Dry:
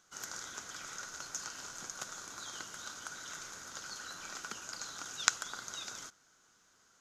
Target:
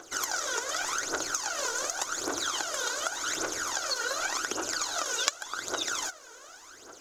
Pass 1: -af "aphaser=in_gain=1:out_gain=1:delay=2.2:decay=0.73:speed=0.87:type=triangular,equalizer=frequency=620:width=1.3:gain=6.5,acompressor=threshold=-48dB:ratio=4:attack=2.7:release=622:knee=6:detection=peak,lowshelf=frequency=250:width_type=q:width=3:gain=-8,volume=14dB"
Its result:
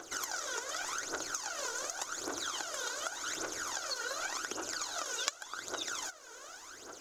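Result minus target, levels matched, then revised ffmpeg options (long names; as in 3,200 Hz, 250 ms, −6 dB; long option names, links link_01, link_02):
downward compressor: peak gain reduction +7 dB
-af "aphaser=in_gain=1:out_gain=1:delay=2.2:decay=0.73:speed=0.87:type=triangular,equalizer=frequency=620:width=1.3:gain=6.5,acompressor=threshold=-39dB:ratio=4:attack=2.7:release=622:knee=6:detection=peak,lowshelf=frequency=250:width_type=q:width=3:gain=-8,volume=14dB"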